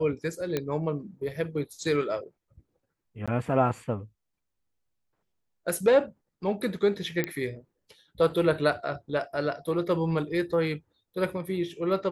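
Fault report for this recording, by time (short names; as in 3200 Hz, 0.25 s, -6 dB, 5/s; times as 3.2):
0.57 pop -14 dBFS
3.26–3.28 gap 16 ms
7.24 pop -14 dBFS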